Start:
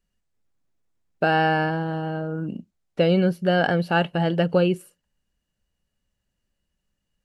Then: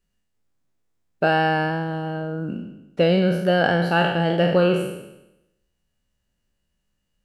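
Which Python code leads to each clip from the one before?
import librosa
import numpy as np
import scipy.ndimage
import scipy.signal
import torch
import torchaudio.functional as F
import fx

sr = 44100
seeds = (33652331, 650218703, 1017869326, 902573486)

y = fx.spec_trails(x, sr, decay_s=0.9)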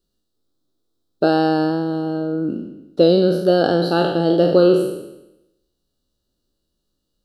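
y = fx.curve_eq(x, sr, hz=(200.0, 310.0, 950.0, 1300.0, 2200.0, 3900.0, 6500.0, 13000.0), db=(0, 12, -2, 3, -19, 13, 1, 5))
y = y * librosa.db_to_amplitude(-1.0)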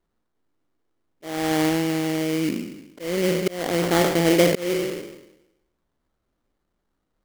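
y = fx.auto_swell(x, sr, attack_ms=436.0)
y = fx.sample_hold(y, sr, seeds[0], rate_hz=2600.0, jitter_pct=20)
y = y * librosa.db_to_amplitude(-1.5)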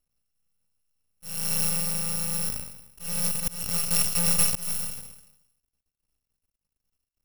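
y = fx.bit_reversed(x, sr, seeds[1], block=128)
y = np.maximum(y, 0.0)
y = y * librosa.db_to_amplitude(-2.0)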